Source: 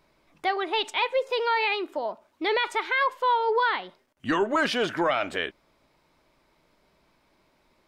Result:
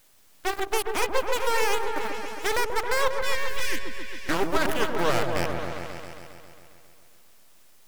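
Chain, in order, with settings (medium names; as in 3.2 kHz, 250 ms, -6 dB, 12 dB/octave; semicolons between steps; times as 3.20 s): tracing distortion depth 0.17 ms; added noise white -48 dBFS; Chebyshev shaper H 3 -33 dB, 4 -20 dB, 7 -15 dB, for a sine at -14 dBFS; half-wave rectifier; 3.16–3.80 s: brick-wall FIR band-stop 410–1500 Hz; delay with an opening low-pass 135 ms, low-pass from 750 Hz, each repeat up 1 oct, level -3 dB; trim +3 dB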